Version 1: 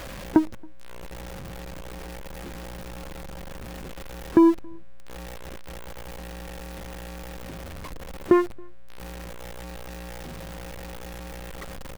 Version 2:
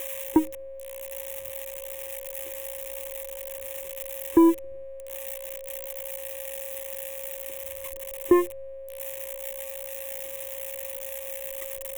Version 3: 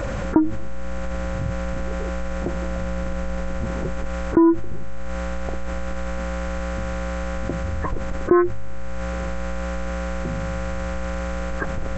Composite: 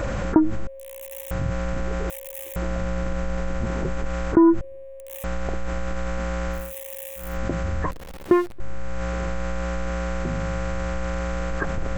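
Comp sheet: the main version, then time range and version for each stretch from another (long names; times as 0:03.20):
3
0:00.67–0:01.31: punch in from 2
0:02.10–0:02.56: punch in from 2
0:04.61–0:05.24: punch in from 2
0:06.62–0:07.27: punch in from 2, crossfade 0.24 s
0:07.91–0:08.60: punch in from 1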